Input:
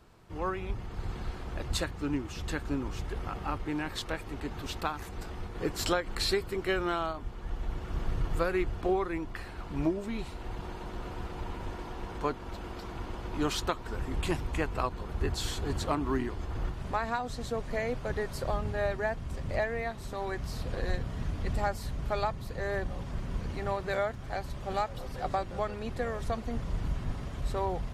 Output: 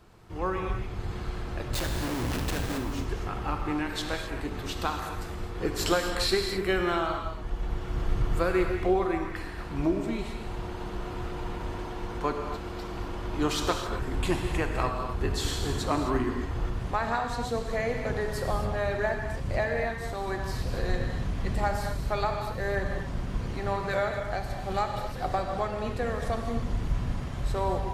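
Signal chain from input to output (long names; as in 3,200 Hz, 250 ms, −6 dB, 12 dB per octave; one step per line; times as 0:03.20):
0:01.74–0:02.78: comparator with hysteresis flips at −43 dBFS
reverb whose tail is shaped and stops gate 290 ms flat, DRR 3 dB
level +2 dB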